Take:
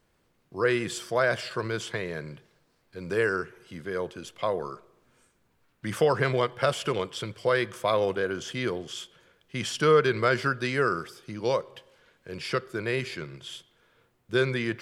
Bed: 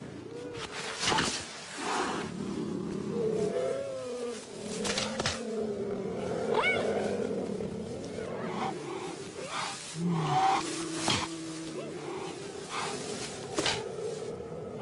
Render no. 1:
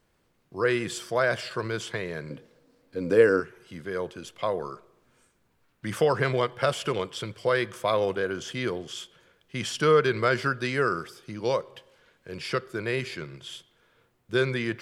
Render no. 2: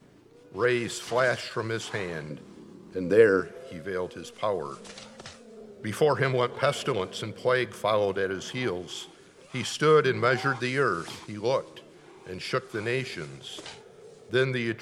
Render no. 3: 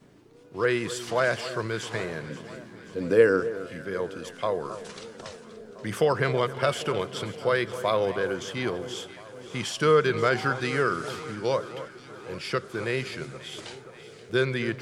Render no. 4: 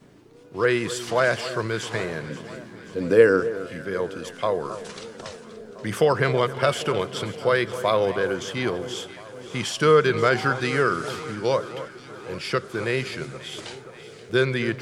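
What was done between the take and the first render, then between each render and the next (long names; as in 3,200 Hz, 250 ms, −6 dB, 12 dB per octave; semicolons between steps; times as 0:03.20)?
0:02.30–0:03.40: hollow resonant body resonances 270/490 Hz, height 14 dB
mix in bed −13 dB
delay that swaps between a low-pass and a high-pass 265 ms, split 1,500 Hz, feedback 77%, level −13 dB
level +3.5 dB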